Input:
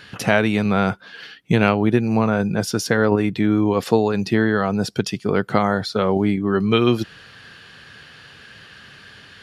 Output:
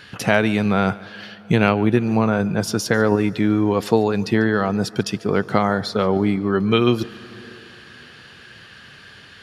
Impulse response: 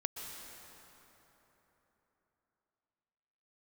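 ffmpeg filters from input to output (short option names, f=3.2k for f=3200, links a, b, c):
-filter_complex "[0:a]asplit=2[a][b];[1:a]atrim=start_sample=2205,adelay=144[c];[b][c]afir=irnorm=-1:irlink=0,volume=-19.5dB[d];[a][d]amix=inputs=2:normalize=0"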